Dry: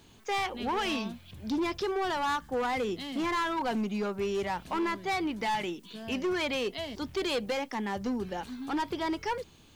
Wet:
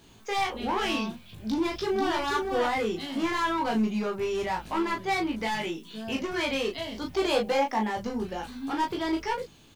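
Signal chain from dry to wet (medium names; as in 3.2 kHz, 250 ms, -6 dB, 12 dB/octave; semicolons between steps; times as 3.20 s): 7.12–7.87 s: peaking EQ 730 Hz +10 dB 0.86 oct; early reflections 18 ms -3.5 dB, 37 ms -4.5 dB; 1.25–2.19 s: echo throw 490 ms, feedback 15%, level -4.5 dB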